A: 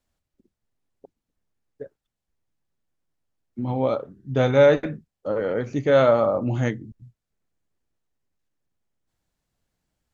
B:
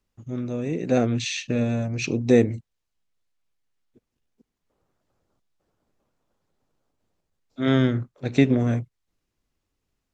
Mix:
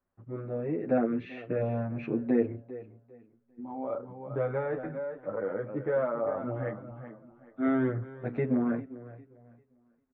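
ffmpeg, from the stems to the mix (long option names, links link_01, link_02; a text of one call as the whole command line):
ffmpeg -i stem1.wav -i stem2.wav -filter_complex "[0:a]acompressor=threshold=-20dB:ratio=3,volume=-2.5dB,asplit=2[link_01][link_02];[link_02]volume=-10dB[link_03];[1:a]alimiter=limit=-11.5dB:level=0:latency=1:release=173,volume=1dB,asplit=3[link_04][link_05][link_06];[link_05]volume=-17dB[link_07];[link_06]apad=whole_len=446948[link_08];[link_01][link_08]sidechaincompress=threshold=-35dB:ratio=8:attack=11:release=1250[link_09];[link_03][link_07]amix=inputs=2:normalize=0,aecho=0:1:399|798|1197|1596:1|0.28|0.0784|0.022[link_10];[link_09][link_04][link_10]amix=inputs=3:normalize=0,lowpass=frequency=1700:width=0.5412,lowpass=frequency=1700:width=1.3066,lowshelf=frequency=170:gain=-10.5,asplit=2[link_11][link_12];[link_12]adelay=8.6,afreqshift=0.79[link_13];[link_11][link_13]amix=inputs=2:normalize=1" out.wav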